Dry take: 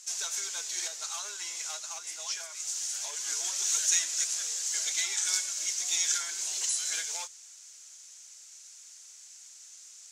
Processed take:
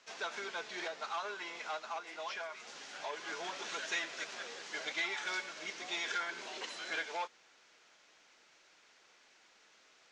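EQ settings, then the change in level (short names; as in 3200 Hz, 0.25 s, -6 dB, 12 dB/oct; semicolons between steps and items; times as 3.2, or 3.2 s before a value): steep low-pass 11000 Hz; air absorption 370 m; tilt -2.5 dB/oct; +8.5 dB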